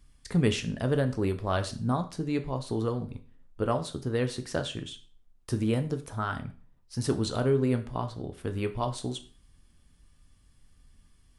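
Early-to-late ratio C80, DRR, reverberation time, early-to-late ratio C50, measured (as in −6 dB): 19.0 dB, 7.5 dB, 0.40 s, 14.0 dB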